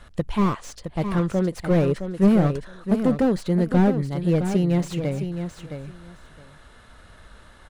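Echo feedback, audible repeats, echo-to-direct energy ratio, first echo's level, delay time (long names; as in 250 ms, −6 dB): 16%, 2, −8.5 dB, −8.5 dB, 665 ms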